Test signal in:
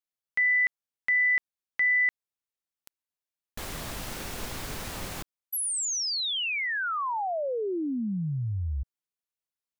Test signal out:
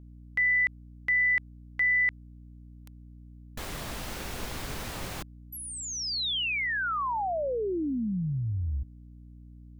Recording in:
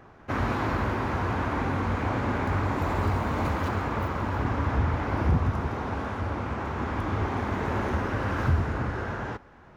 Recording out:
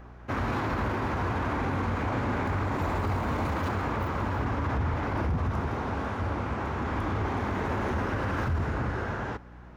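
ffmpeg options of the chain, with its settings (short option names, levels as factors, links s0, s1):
-filter_complex "[0:a]acrossover=split=4900[s0][s1];[s1]acompressor=threshold=0.00891:ratio=4:attack=1:release=60[s2];[s0][s2]amix=inputs=2:normalize=0,alimiter=limit=0.0891:level=0:latency=1:release=16,aeval=exprs='val(0)+0.00447*(sin(2*PI*60*n/s)+sin(2*PI*2*60*n/s)/2+sin(2*PI*3*60*n/s)/3+sin(2*PI*4*60*n/s)/4+sin(2*PI*5*60*n/s)/5)':c=same"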